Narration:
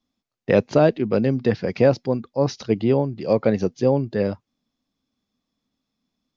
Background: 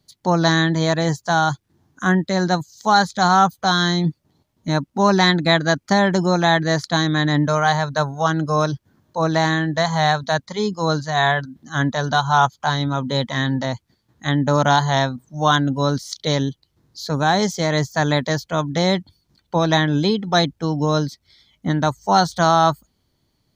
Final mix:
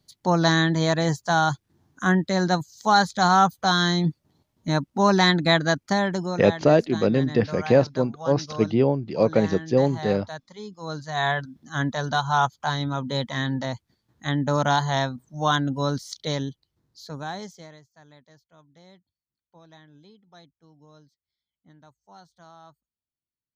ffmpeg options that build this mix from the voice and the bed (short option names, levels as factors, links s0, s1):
-filter_complex "[0:a]adelay=5900,volume=0.891[s0];[1:a]volume=2.51,afade=t=out:st=5.6:d=0.95:silence=0.211349,afade=t=in:st=10.8:d=0.52:silence=0.281838,afade=t=out:st=15.97:d=1.84:silence=0.0375837[s1];[s0][s1]amix=inputs=2:normalize=0"